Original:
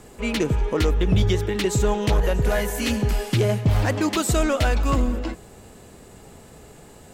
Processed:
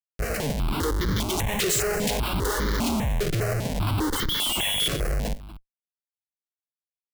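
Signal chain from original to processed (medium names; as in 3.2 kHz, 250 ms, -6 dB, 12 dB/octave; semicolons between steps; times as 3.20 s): 0.83–2.58 s: tilt EQ +3.5 dB/octave; 4.15–4.88 s: frequency inversion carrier 3.4 kHz; Schmitt trigger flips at -28.5 dBFS; on a send: delay 238 ms -16.5 dB; on the sum: stepped phaser 5 Hz 240–2600 Hz; trim +1 dB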